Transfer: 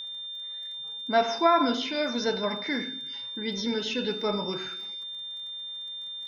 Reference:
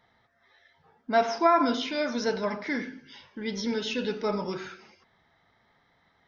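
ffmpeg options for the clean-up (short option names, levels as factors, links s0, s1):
-af "adeclick=t=4,bandreject=f=3600:w=30"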